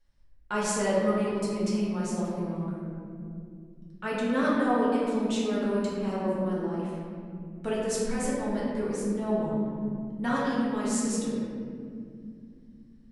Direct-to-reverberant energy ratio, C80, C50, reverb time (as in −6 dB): −8.0 dB, 0.0 dB, −2.5 dB, 2.4 s